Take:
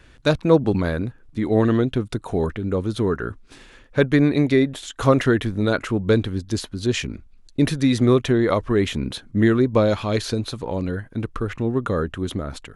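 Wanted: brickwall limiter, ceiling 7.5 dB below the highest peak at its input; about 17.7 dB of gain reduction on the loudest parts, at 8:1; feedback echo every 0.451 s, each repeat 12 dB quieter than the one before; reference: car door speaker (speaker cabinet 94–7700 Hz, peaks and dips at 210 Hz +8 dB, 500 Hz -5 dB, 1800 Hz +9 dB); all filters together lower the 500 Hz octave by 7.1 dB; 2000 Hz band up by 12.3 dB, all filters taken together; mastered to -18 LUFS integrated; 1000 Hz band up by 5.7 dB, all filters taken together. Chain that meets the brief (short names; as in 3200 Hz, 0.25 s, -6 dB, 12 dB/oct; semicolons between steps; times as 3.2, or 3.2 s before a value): bell 500 Hz -9 dB; bell 1000 Hz +6 dB; bell 2000 Hz +7 dB; compressor 8:1, threshold -31 dBFS; limiter -25.5 dBFS; speaker cabinet 94–7700 Hz, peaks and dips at 210 Hz +8 dB, 500 Hz -5 dB, 1800 Hz +9 dB; feedback echo 0.451 s, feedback 25%, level -12 dB; gain +16 dB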